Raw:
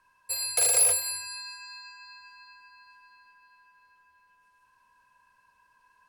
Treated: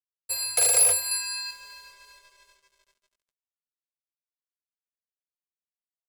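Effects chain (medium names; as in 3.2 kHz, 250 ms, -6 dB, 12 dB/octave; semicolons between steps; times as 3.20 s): 1.11–1.51 s: tilt shelf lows -6 dB, about 870 Hz; crossover distortion -50 dBFS; trim +2.5 dB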